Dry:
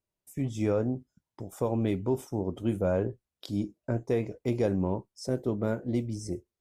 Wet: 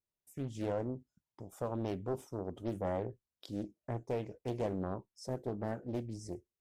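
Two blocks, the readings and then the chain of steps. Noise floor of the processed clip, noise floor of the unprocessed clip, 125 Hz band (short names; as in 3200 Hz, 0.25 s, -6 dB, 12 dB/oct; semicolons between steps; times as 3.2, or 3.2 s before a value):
under -85 dBFS, under -85 dBFS, -9.0 dB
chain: Doppler distortion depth 0.72 ms; gain -8 dB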